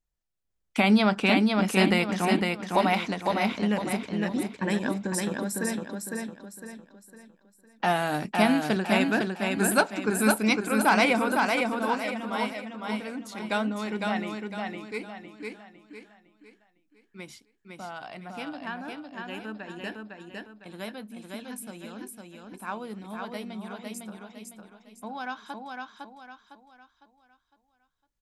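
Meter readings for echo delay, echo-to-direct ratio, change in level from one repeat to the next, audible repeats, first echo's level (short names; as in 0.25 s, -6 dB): 0.506 s, -3.0 dB, -8.5 dB, 4, -3.5 dB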